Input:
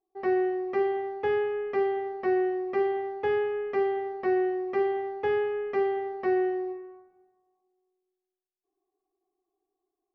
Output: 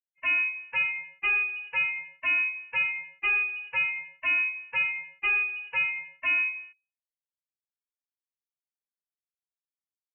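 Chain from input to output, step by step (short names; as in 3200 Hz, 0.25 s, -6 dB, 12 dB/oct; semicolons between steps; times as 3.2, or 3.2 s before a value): per-bin expansion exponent 3; low shelf 74 Hz +11 dB; sample leveller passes 2; inverted band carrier 2900 Hz; gain -1.5 dB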